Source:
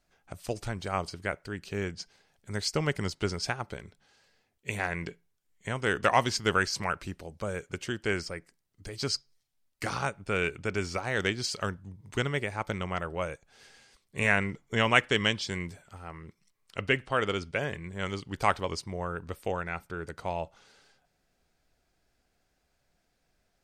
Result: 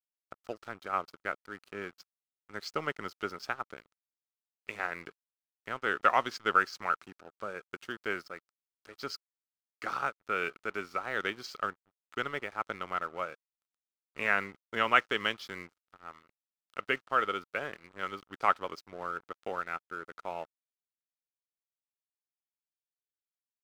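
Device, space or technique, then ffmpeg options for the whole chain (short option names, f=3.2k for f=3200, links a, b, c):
pocket radio on a weak battery: -af "highpass=270,lowpass=4.2k,aeval=exprs='sgn(val(0))*max(abs(val(0))-0.00447,0)':c=same,equalizer=f=1.3k:t=o:w=0.34:g=11,volume=-4.5dB"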